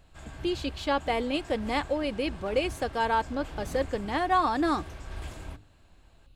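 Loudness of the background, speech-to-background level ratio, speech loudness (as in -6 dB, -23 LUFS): -43.0 LUFS, 14.0 dB, -29.0 LUFS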